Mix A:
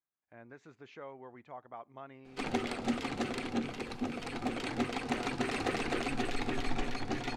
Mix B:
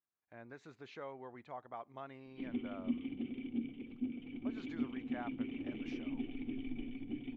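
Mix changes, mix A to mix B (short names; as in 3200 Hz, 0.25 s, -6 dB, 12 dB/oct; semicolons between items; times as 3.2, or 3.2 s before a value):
speech: add bell 4000 Hz +6.5 dB 0.32 oct; background: add vocal tract filter i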